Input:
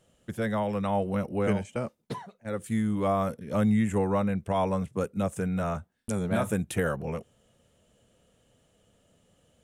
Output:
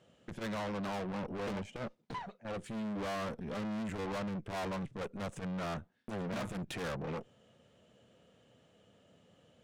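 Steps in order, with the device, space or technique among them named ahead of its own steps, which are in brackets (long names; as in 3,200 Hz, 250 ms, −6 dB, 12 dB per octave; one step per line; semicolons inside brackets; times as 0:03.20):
valve radio (band-pass filter 110–4,600 Hz; tube saturation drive 40 dB, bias 0.6; saturating transformer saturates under 110 Hz)
level +4.5 dB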